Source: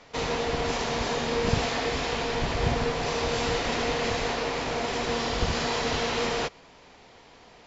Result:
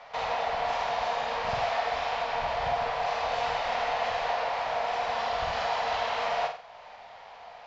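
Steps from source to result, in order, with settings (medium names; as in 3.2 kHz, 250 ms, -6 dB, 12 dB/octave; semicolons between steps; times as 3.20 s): resonant low shelf 480 Hz -12.5 dB, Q 3; in parallel at +3 dB: compression, threshold -40 dBFS, peak gain reduction 17 dB; on the sum: distance through air 170 m; flutter echo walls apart 8.2 m, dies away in 0.44 s; trim -4.5 dB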